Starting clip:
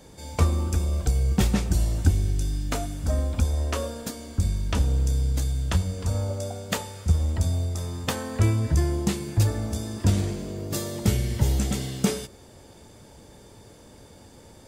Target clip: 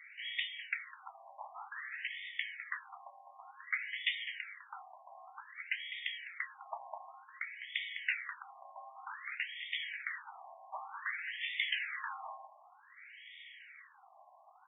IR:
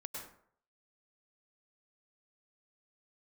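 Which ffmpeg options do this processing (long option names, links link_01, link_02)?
-filter_complex "[0:a]afftfilt=real='real(if(lt(b,736),b+184*(1-2*mod(floor(b/184),2)),b),0)':imag='imag(if(lt(b,736),b+184*(1-2*mod(floor(b/184),2)),b),0)':win_size=2048:overlap=0.75,acrossover=split=2200[link_01][link_02];[link_02]asoftclip=type=hard:threshold=-19.5dB[link_03];[link_01][link_03]amix=inputs=2:normalize=0,highpass=frequency=400:width=0.5412,highpass=frequency=400:width=1.3066,equalizer=frequency=420:width_type=q:width=4:gain=-5,equalizer=frequency=630:width_type=q:width=4:gain=-5,equalizer=frequency=1100:width_type=q:width=4:gain=-5,equalizer=frequency=2000:width_type=q:width=4:gain=9,equalizer=frequency=3000:width_type=q:width=4:gain=3,lowpass=frequency=6000:width=0.5412,lowpass=frequency=6000:width=1.3066,asplit=2[link_04][link_05];[link_05]adelay=205,lowpass=frequency=1200:poles=1,volume=-5dB,asplit=2[link_06][link_07];[link_07]adelay=205,lowpass=frequency=1200:poles=1,volume=0.19,asplit=2[link_08][link_09];[link_09]adelay=205,lowpass=frequency=1200:poles=1,volume=0.19[link_10];[link_06][link_08][link_10]amix=inputs=3:normalize=0[link_11];[link_04][link_11]amix=inputs=2:normalize=0,acompressor=threshold=-29dB:ratio=2,afftfilt=real='re*between(b*sr/1024,790*pow(2600/790,0.5+0.5*sin(2*PI*0.54*pts/sr))/1.41,790*pow(2600/790,0.5+0.5*sin(2*PI*0.54*pts/sr))*1.41)':imag='im*between(b*sr/1024,790*pow(2600/790,0.5+0.5*sin(2*PI*0.54*pts/sr))/1.41,790*pow(2600/790,0.5+0.5*sin(2*PI*0.54*pts/sr))*1.41)':win_size=1024:overlap=0.75,volume=7dB"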